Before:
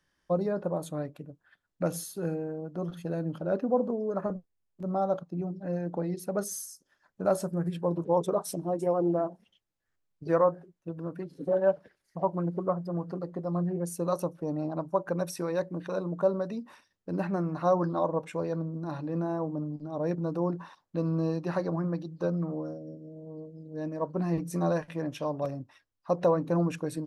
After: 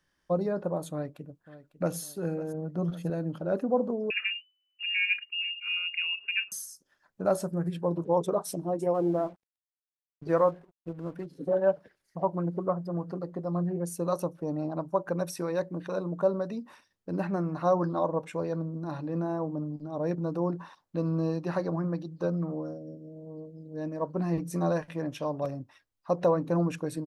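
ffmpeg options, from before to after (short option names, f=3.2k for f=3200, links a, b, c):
-filter_complex "[0:a]asplit=2[a][b];[b]afade=t=in:st=0.91:d=0.01,afade=t=out:st=1.97:d=0.01,aecho=0:1:550|1100|1650|2200:0.158489|0.0792447|0.0396223|0.0198112[c];[a][c]amix=inputs=2:normalize=0,asettb=1/sr,asplit=3[d][e][f];[d]atrim=end=2.544[g];[e]atrim=start=2.54:end=3.1,asetpts=PTS-STARTPTS,afade=t=in:d=0.004:c=qsin,afade=t=out:st=0.556:d=0.004:c=qsin,equalizer=f=160:w=1.5:g=6[h];[f]atrim=start=3.096[i];[g][h]acrossfade=d=0.004:c1=hsin:c2=qsin[j];[j][i]acrossfade=d=0.004:c1=qsin:c2=hsin,asettb=1/sr,asplit=3[k][l][m];[k]atrim=end=4.104[n];[l]atrim=start=4.1:end=6.52,asetpts=PTS-STARTPTS,afade=t=in:d=0.004:c=qsin,afade=t=out:st=2.416:d=0.004:c=qsin,lowpass=f=2.6k:t=q:w=0.5098,lowpass=f=2.6k:t=q:w=0.6013,lowpass=f=2.6k:t=q:w=0.9,lowpass=f=2.6k:t=q:w=2.563,afreqshift=-3000[o];[m]atrim=start=6.516[p];[n][o]acrossfade=d=0.004:c1=hsin:c2=qsin[q];[q][p]acrossfade=d=0.004:c1=qsin:c2=hsin,asettb=1/sr,asplit=3[r][s][t];[r]atrim=end=8.944[u];[s]atrim=start=8.94:end=11.26,asetpts=PTS-STARTPTS,afade=t=in:d=0.004:c=qsin,afade=t=out:st=2.316:d=0.004:c=qsin,aeval=exprs='sgn(val(0))*max(abs(val(0))-0.00141,0)':c=same[v];[t]atrim=start=11.256[w];[u][v]acrossfade=d=0.004:c1=hsin:c2=qsin[x];[x][w]acrossfade=d=0.004:c1=qsin:c2=hsin"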